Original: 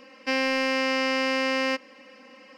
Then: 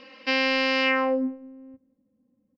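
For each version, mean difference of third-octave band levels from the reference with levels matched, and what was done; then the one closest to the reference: 10.5 dB: low-pass sweep 3.9 kHz -> 110 Hz, 0.82–1.39 s; on a send: delay 182 ms -23.5 dB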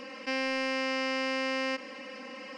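4.5 dB: resampled via 22.05 kHz; level flattener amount 50%; trim -6.5 dB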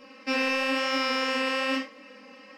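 3.0 dB: flange 1 Hz, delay 6.5 ms, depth 7.8 ms, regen +71%; gated-style reverb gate 130 ms falling, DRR -4 dB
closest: third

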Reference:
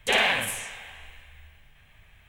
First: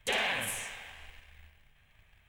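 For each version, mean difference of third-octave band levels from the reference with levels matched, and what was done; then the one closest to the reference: 2.5 dB: waveshaping leveller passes 1; compression 2:1, threshold -25 dBFS, peak gain reduction 5.5 dB; trim -6.5 dB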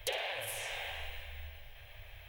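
11.0 dB: FFT filter 120 Hz 0 dB, 170 Hz -26 dB, 550 Hz +7 dB, 1.2 kHz -5 dB, 3.6 kHz +2 dB, 5.3 kHz +2 dB, 7.7 kHz -8 dB, 15 kHz +7 dB; compression 10:1, threshold -39 dBFS, peak gain reduction 21.5 dB; trim +4 dB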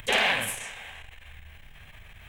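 3.5 dB: upward compressor, threshold -36 dBFS; transformer saturation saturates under 1.1 kHz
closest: first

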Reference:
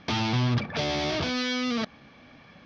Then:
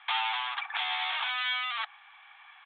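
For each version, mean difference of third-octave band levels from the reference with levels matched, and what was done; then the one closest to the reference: 16.0 dB: steep high-pass 760 Hz 96 dB/octave; resampled via 8 kHz; trim +2 dB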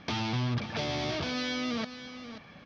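3.5 dB: in parallel at +3 dB: compression, threshold -38 dBFS, peak gain reduction 16 dB; on the sum: delay 534 ms -11.5 dB; trim -7.5 dB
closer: second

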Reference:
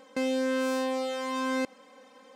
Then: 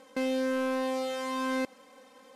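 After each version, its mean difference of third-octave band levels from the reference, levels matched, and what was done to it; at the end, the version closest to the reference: 2.5 dB: CVSD coder 64 kbps; trim -1 dB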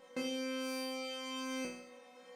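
5.0 dB: chord resonator B2 sus4, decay 0.66 s; trim +15 dB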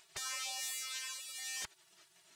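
12.5 dB: spectral gate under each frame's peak -25 dB weak; trim +7 dB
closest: first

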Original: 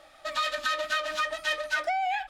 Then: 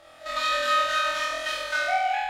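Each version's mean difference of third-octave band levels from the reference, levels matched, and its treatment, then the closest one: 4.5 dB: spectrogram pixelated in time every 50 ms; peaking EQ 99 Hz +6.5 dB 0.8 oct; on a send: flutter echo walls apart 4.1 m, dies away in 1.1 s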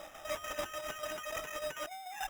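11.5 dB: treble shelf 3.5 kHz -5.5 dB; compressor with a negative ratio -39 dBFS, ratio -1; tremolo saw down 6.8 Hz, depth 55%; sample-rate reducer 4.4 kHz, jitter 0%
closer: first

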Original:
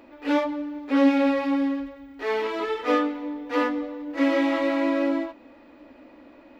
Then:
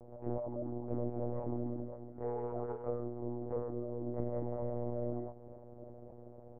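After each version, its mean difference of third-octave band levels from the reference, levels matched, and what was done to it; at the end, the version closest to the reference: 13.5 dB: compression 5:1, threshold -33 dBFS, peak gain reduction 17 dB; four-pole ladder low-pass 810 Hz, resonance 35%; on a send: delay 852 ms -21 dB; on the sum: monotone LPC vocoder at 8 kHz 120 Hz; trim +3 dB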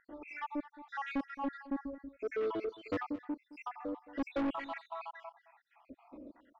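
8.5 dB: random holes in the spectrogram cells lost 76%; low-pass 1 kHz 6 dB/octave; saturation -30 dBFS, distortion -6 dB; on a send: delay 217 ms -17 dB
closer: second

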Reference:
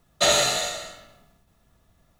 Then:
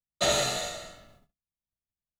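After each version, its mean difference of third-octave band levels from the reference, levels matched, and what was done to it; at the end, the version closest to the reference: 2.0 dB: gate -54 dBFS, range -37 dB; bass shelf 450 Hz +7 dB; trim -7 dB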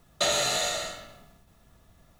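5.0 dB: in parallel at +1.5 dB: peak limiter -18 dBFS, peak gain reduction 10 dB; on the sum: compression 2.5:1, threshold -22 dBFS, peak gain reduction 7 dB; trim -3 dB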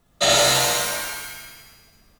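8.5 dB: on a send: reverse bouncing-ball echo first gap 60 ms, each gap 1.15×, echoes 5; on the sum: pitch-shifted reverb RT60 1.2 s, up +7 st, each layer -2 dB, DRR 4 dB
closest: first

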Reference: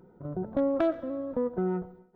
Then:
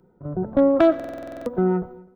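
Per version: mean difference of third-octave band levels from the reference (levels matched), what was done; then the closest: 3.0 dB: on a send: feedback delay 249 ms, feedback 38%, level -21.5 dB; on the sum: buffer glitch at 0.95 s, samples 2048, times 10; three bands expanded up and down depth 40%; trim +8.5 dB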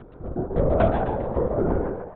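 7.0 dB: upward compressor, threshold -43 dBFS; on a send: frequency-shifting echo 134 ms, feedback 42%, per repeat +100 Hz, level -4 dB; on the sum: LPC vocoder at 8 kHz whisper; trim +5 dB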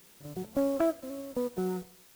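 10.0 dB: low-pass 2.6 kHz 12 dB/octave; in parallel at -9 dB: word length cut 6-bit, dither triangular; on the sum: upward expansion 1.5:1, over -40 dBFS; trim -3.5 dB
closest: first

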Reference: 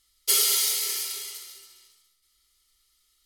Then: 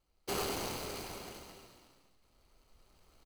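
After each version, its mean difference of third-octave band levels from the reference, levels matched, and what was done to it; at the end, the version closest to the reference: 16.0 dB: median filter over 25 samples; recorder AGC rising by 5.9 dB/s; frequency-shifting echo 104 ms, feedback 60%, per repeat -43 Hz, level -10 dB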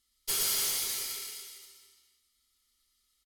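5.5 dB: peaking EQ 240 Hz +11.5 dB 0.44 oct; valve stage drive 20 dB, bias 0.7; loudspeakers at several distances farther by 40 m -3 dB, 96 m -8 dB; trim -4.5 dB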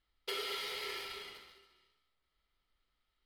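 12.5 dB: companding laws mixed up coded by A; compression 6:1, threshold -25 dBFS, peak gain reduction 7.5 dB; distance through air 430 m; trim +5 dB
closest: second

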